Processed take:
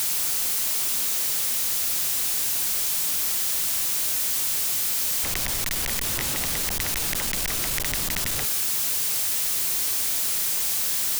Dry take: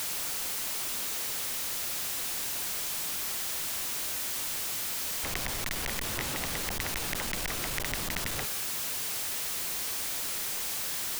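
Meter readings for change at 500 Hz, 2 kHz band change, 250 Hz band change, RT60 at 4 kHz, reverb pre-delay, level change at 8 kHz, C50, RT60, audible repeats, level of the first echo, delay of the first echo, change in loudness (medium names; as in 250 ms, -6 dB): +2.5 dB, +3.5 dB, +3.5 dB, no reverb, no reverb, +8.5 dB, no reverb, no reverb, no echo, no echo, no echo, +8.5 dB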